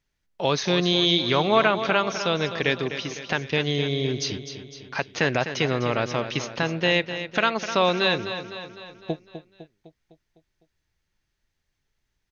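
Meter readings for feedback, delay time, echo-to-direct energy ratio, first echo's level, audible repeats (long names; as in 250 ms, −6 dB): 54%, 253 ms, −9.0 dB, −10.5 dB, 5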